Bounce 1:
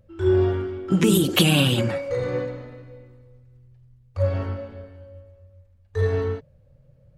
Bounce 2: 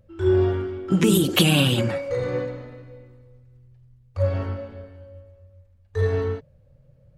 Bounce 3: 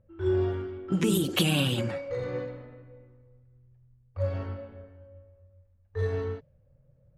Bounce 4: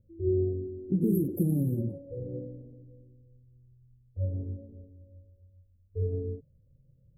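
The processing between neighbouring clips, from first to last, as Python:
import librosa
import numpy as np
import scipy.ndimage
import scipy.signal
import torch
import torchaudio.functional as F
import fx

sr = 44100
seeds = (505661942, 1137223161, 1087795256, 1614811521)

y1 = x
y2 = fx.env_lowpass(y1, sr, base_hz=1800.0, full_db=-17.0)
y2 = y2 * 10.0 ** (-7.0 / 20.0)
y3 = scipy.signal.sosfilt(scipy.signal.cheby2(4, 70, [1400.0, 5000.0], 'bandstop', fs=sr, output='sos'), y2)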